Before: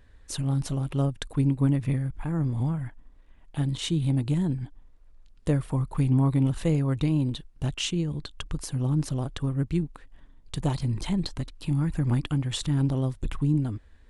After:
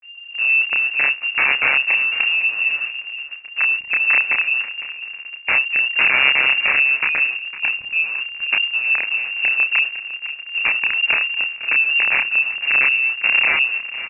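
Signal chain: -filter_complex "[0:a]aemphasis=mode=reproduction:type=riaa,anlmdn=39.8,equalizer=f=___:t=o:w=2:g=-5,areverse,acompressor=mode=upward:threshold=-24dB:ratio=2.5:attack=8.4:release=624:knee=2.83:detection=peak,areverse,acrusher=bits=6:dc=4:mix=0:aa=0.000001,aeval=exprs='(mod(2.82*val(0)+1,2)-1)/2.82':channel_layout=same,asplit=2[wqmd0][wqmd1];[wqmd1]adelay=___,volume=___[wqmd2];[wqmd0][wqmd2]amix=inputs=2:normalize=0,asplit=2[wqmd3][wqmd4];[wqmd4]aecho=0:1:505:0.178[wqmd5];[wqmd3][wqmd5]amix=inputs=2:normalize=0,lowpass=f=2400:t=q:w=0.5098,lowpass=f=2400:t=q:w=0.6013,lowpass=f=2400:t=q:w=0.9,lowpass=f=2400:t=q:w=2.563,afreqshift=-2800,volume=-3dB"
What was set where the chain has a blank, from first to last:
64, 29, -4dB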